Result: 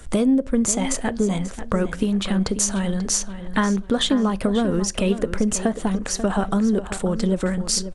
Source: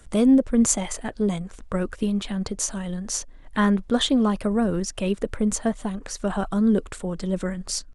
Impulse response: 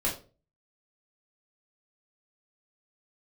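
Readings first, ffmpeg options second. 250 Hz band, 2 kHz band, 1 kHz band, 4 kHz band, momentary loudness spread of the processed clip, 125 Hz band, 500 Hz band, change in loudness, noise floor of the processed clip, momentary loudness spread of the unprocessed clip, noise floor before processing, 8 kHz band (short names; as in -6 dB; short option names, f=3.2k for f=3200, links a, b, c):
+1.0 dB, +3.5 dB, +3.0 dB, +3.5 dB, 5 LU, +3.5 dB, +2.5 dB, +2.0 dB, -35 dBFS, 11 LU, -45 dBFS, +4.0 dB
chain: -filter_complex "[0:a]acompressor=threshold=-25dB:ratio=5,asplit=2[a][b];[b]adelay=538,lowpass=f=4.6k:p=1,volume=-11.5dB,asplit=2[c][d];[d]adelay=538,lowpass=f=4.6k:p=1,volume=0.29,asplit=2[e][f];[f]adelay=538,lowpass=f=4.6k:p=1,volume=0.29[g];[a][c][e][g]amix=inputs=4:normalize=0,asplit=2[h][i];[1:a]atrim=start_sample=2205[j];[i][j]afir=irnorm=-1:irlink=0,volume=-26dB[k];[h][k]amix=inputs=2:normalize=0,volume=7.5dB"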